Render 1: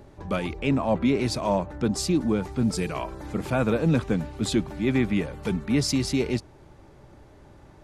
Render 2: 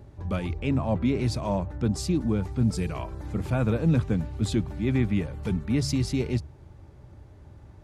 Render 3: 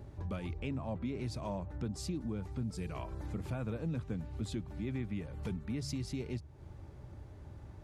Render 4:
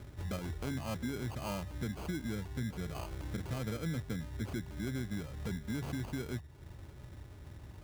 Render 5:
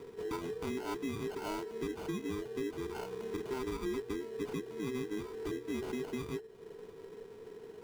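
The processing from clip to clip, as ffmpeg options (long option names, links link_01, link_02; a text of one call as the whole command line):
ffmpeg -i in.wav -af "equalizer=frequency=83:width_type=o:width=1.7:gain=14,bandreject=frequency=70.67:width_type=h:width=4,bandreject=frequency=141.34:width_type=h:width=4,volume=-5.5dB" out.wav
ffmpeg -i in.wav -af "acompressor=threshold=-37dB:ratio=3,volume=-1.5dB" out.wav
ffmpeg -i in.wav -af "acrusher=samples=24:mix=1:aa=0.000001" out.wav
ffmpeg -i in.wav -af "afftfilt=real='real(if(between(b,1,1008),(2*floor((b-1)/24)+1)*24-b,b),0)':imag='imag(if(between(b,1,1008),(2*floor((b-1)/24)+1)*24-b,b),0)*if(between(b,1,1008),-1,1)':win_size=2048:overlap=0.75,highshelf=frequency=7300:gain=-4,bandreject=frequency=60:width_type=h:width=6,bandreject=frequency=120:width_type=h:width=6" out.wav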